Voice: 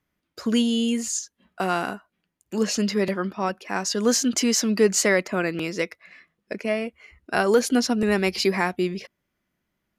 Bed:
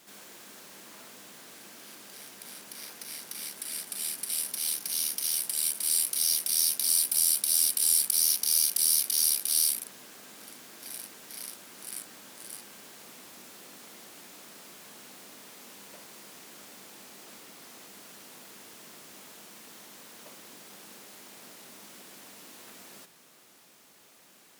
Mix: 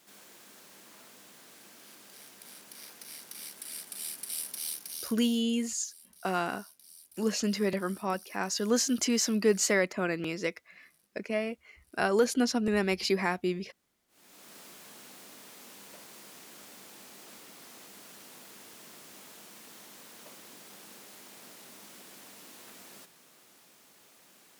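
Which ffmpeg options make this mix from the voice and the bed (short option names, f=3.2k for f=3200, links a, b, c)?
-filter_complex "[0:a]adelay=4650,volume=-6dB[a];[1:a]volume=22.5dB,afade=t=out:st=4.6:d=0.82:silence=0.0630957,afade=t=in:st=14.08:d=0.48:silence=0.0421697[b];[a][b]amix=inputs=2:normalize=0"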